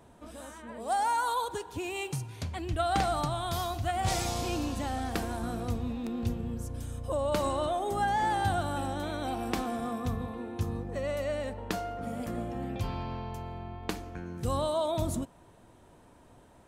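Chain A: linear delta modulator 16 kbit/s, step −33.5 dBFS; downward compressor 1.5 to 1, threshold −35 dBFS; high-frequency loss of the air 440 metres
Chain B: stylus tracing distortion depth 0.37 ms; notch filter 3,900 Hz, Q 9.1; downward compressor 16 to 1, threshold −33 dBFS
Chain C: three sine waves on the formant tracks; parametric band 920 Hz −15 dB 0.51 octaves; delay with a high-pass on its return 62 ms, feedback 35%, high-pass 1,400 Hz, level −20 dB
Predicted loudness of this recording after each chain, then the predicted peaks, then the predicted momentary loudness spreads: −37.0, −38.5, −38.0 LKFS; −20.5, −18.5, −19.5 dBFS; 7, 6, 19 LU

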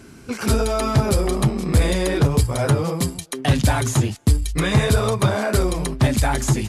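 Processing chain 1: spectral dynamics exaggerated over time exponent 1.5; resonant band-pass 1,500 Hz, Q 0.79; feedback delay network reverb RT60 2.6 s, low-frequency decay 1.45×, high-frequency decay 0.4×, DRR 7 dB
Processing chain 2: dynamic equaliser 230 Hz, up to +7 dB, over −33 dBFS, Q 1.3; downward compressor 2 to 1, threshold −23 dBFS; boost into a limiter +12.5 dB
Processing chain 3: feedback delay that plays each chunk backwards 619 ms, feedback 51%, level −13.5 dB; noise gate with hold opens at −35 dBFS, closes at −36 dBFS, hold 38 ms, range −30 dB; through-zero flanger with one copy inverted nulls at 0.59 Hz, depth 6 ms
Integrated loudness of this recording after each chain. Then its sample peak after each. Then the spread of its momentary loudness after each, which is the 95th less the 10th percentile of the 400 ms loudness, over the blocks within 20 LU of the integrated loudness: −31.0, −12.0, −23.0 LKFS; −15.5, −1.0, −8.0 dBFS; 9, 3, 7 LU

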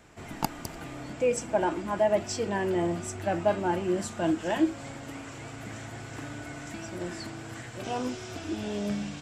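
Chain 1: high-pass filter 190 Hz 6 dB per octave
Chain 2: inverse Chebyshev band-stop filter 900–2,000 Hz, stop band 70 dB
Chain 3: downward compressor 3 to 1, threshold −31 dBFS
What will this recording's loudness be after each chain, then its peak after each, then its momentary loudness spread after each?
−32.0, −36.5, −36.0 LKFS; −9.5, −16.0, −15.5 dBFS; 14, 11, 8 LU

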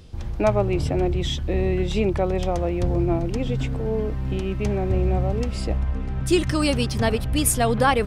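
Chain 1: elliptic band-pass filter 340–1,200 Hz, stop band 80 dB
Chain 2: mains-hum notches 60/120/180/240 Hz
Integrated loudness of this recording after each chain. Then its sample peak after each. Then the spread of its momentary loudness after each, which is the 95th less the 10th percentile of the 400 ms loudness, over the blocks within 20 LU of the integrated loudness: −27.5, −23.5 LKFS; −9.0, −6.0 dBFS; 11, 7 LU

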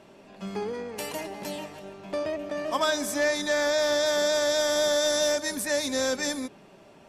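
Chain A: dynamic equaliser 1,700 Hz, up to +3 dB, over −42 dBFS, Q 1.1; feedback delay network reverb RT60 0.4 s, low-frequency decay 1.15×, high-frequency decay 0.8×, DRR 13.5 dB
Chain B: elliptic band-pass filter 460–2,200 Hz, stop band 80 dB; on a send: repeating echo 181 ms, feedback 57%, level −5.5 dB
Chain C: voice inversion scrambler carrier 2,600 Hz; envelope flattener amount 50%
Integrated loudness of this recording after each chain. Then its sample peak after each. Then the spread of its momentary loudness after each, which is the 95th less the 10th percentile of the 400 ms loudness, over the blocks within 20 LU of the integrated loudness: −25.5, −27.5, −24.0 LKFS; −13.5, −14.5, −13.5 dBFS; 13, 14, 8 LU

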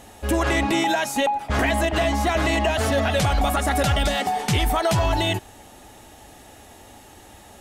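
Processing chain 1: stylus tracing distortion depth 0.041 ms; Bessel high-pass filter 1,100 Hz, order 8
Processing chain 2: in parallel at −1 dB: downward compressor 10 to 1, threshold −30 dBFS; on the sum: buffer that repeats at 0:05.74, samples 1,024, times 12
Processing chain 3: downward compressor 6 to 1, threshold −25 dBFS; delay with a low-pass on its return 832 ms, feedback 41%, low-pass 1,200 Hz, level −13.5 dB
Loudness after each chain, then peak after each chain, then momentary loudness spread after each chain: −26.5, −20.0, −28.5 LKFS; −12.5, −10.0, −14.5 dBFS; 3, 2, 17 LU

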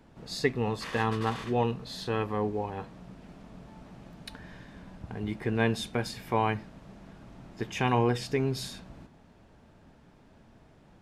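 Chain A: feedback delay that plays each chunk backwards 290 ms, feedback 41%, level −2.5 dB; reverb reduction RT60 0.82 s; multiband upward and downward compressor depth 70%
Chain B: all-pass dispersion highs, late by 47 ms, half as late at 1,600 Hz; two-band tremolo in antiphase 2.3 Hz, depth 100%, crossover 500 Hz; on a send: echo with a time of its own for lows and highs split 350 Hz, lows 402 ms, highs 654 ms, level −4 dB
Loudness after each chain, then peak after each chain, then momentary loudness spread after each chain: −32.0, −35.5 LKFS; −12.5, −18.0 dBFS; 13, 17 LU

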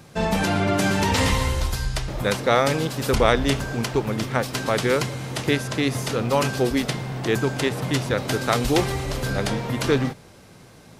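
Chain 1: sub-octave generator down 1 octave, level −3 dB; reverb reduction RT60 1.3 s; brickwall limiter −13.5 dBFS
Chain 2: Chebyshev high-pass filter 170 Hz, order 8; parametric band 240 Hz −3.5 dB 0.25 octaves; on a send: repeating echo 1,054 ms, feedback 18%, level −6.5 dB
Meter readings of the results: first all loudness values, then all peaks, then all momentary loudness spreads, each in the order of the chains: −26.0, −24.0 LKFS; −13.5, −5.0 dBFS; 5, 7 LU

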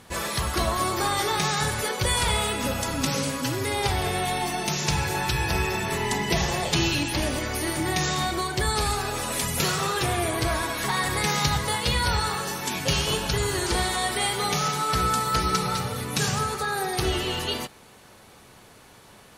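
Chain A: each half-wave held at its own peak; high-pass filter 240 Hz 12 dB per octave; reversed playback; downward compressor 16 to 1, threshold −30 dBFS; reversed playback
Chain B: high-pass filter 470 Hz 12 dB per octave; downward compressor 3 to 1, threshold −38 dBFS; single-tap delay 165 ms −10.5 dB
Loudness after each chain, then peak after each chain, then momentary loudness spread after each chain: −33.0, −36.0 LKFS; −19.0, −18.5 dBFS; 2, 2 LU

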